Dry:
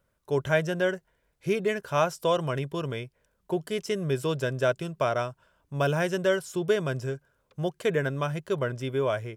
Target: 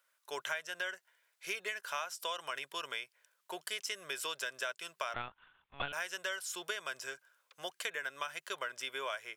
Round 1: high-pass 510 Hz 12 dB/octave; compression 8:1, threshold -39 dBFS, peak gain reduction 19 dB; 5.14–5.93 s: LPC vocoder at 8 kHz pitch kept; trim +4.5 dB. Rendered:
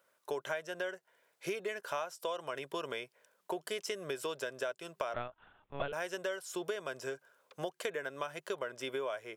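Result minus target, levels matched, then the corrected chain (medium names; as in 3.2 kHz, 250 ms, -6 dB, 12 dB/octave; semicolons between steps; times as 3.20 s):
500 Hz band +8.0 dB
high-pass 1.4 kHz 12 dB/octave; compression 8:1, threshold -39 dBFS, peak gain reduction 14 dB; 5.14–5.93 s: LPC vocoder at 8 kHz pitch kept; trim +4.5 dB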